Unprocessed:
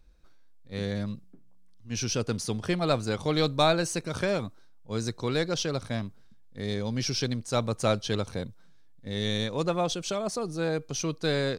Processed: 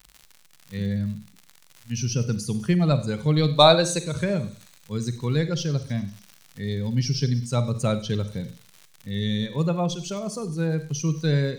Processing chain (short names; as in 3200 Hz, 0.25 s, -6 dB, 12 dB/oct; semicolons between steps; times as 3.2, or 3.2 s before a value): per-bin expansion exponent 1.5; 3.49–4.12 graphic EQ 125/500/1000/4000/8000 Hz -7/+8/+6/+10/+4 dB; crackle 110/s -44 dBFS; bell 150 Hz +12.5 dB 0.83 oct; thin delay 0.1 s, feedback 62%, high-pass 5100 Hz, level -15 dB; on a send at -11 dB: reverb RT60 0.40 s, pre-delay 32 ms; on the sum: mismatched tape noise reduction encoder only; gain +1.5 dB